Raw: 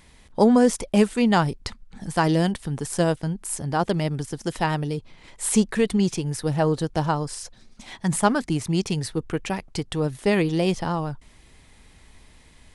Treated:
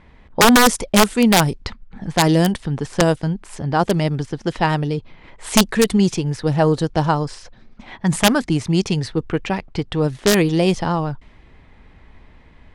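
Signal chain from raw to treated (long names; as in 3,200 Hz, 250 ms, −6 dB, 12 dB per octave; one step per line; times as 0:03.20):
wrap-around overflow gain 10 dB
low-pass that shuts in the quiet parts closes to 1,900 Hz, open at −16 dBFS
level +5.5 dB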